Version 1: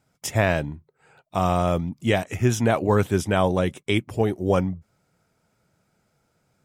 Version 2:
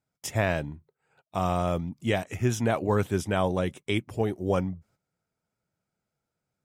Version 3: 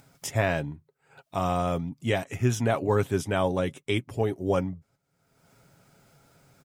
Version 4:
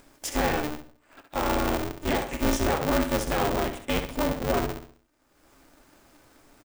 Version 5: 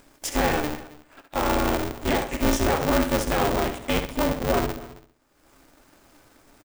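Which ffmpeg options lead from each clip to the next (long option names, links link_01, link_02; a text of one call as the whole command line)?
ffmpeg -i in.wav -af "agate=range=-11dB:threshold=-54dB:ratio=16:detection=peak,volume=-5dB" out.wav
ffmpeg -i in.wav -af "aecho=1:1:7.3:0.35,acompressor=mode=upward:threshold=-39dB:ratio=2.5" out.wav
ffmpeg -i in.wav -af "asoftclip=type=tanh:threshold=-20dB,aecho=1:1:67|134|201|268|335:0.398|0.163|0.0669|0.0274|0.0112,aeval=exprs='val(0)*sgn(sin(2*PI*150*n/s))':channel_layout=same,volume=2dB" out.wav
ffmpeg -i in.wav -filter_complex "[0:a]asplit=2[link_01][link_02];[link_02]acrusher=bits=6:dc=4:mix=0:aa=0.000001,volume=-9dB[link_03];[link_01][link_03]amix=inputs=2:normalize=0,aecho=1:1:270:0.119" out.wav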